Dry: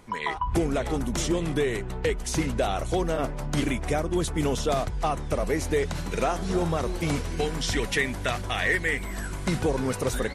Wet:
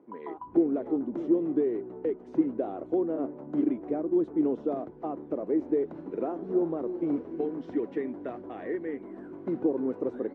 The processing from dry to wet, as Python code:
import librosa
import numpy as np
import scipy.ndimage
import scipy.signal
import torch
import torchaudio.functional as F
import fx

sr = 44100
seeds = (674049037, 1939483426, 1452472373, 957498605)

y = fx.ladder_bandpass(x, sr, hz=350.0, resonance_pct=60)
y = F.gain(torch.from_numpy(y), 7.0).numpy()